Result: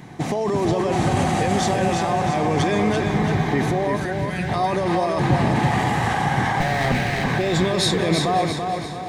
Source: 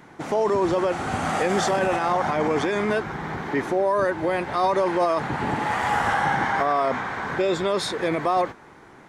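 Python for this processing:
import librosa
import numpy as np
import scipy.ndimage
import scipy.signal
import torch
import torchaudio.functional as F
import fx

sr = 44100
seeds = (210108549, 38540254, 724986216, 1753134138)

p1 = fx.lower_of_two(x, sr, delay_ms=0.47, at=(6.6, 7.24))
p2 = fx.small_body(p1, sr, hz=(730.0, 3900.0), ring_ms=45, db=9)
p3 = fx.over_compress(p2, sr, threshold_db=-25.0, ratio=-0.5)
p4 = p2 + (p3 * 10.0 ** (-1.5 / 20.0))
p5 = np.clip(p4, -10.0 ** (-7.5 / 20.0), 10.0 ** (-7.5 / 20.0))
p6 = fx.peak_eq(p5, sr, hz=130.0, db=7.5, octaves=1.4)
p7 = fx.echo_heads(p6, sr, ms=185, heads='all three', feedback_pct=61, wet_db=-22.5)
p8 = fx.spec_box(p7, sr, start_s=3.96, length_s=0.53, low_hz=230.0, high_hz=1300.0, gain_db=-13)
p9 = fx.peak_eq(p8, sr, hz=780.0, db=-6.5, octaves=2.6)
p10 = fx.notch(p9, sr, hz=1400.0, q=6.2)
y = p10 + fx.echo_feedback(p10, sr, ms=337, feedback_pct=46, wet_db=-5, dry=0)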